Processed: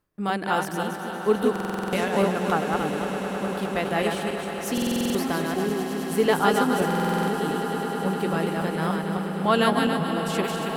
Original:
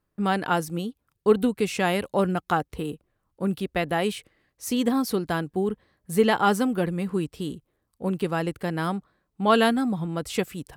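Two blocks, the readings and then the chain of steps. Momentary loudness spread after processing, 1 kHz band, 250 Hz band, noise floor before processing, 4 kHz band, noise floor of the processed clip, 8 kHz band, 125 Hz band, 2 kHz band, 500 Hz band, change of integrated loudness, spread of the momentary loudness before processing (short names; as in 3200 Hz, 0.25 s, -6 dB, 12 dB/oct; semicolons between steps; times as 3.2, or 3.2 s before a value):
8 LU, +2.0 dB, +0.5 dB, -77 dBFS, +2.0 dB, -32 dBFS, +2.0 dB, +1.0 dB, +2.0 dB, +1.5 dB, +1.0 dB, 13 LU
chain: regenerating reverse delay 0.139 s, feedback 59%, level -3 dB; swelling echo 0.103 s, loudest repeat 8, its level -15.5 dB; reverse; upward compressor, threshold -26 dBFS; reverse; low shelf 230 Hz -3.5 dB; stuck buffer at 1.51/4.73/6.86, samples 2048, times 8; gain -1.5 dB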